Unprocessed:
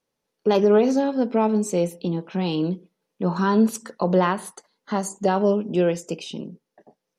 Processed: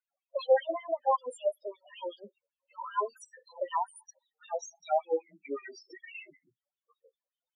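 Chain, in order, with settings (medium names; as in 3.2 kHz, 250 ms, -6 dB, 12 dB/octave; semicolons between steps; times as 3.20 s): gliding tape speed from 132% -> 58%; LFO high-pass sine 5.2 Hz 560–3200 Hz; loudest bins only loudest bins 4; trim -6 dB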